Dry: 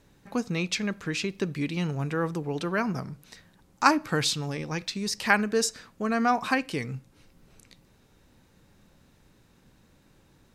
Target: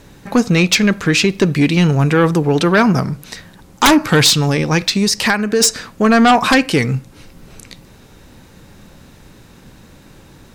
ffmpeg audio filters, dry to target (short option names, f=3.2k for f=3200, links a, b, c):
-filter_complex "[0:a]asplit=3[a][b][c];[a]afade=t=out:st=5.04:d=0.02[d];[b]acompressor=threshold=-29dB:ratio=4,afade=t=in:st=5.04:d=0.02,afade=t=out:st=5.6:d=0.02[e];[c]afade=t=in:st=5.6:d=0.02[f];[d][e][f]amix=inputs=3:normalize=0,aeval=exprs='0.631*sin(PI/2*5.62*val(0)/0.631)':c=same,volume=-1.5dB"